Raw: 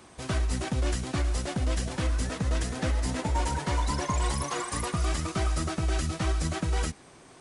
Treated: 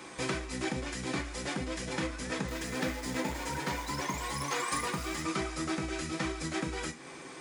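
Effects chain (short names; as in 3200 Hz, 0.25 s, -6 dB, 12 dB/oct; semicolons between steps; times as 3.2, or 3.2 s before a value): 2.48–5.22 short-mantissa float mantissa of 2-bit; compressor 6:1, threshold -35 dBFS, peak gain reduction 12 dB; reverb RT60 0.25 s, pre-delay 3 ms, DRR 3 dB; gain +2.5 dB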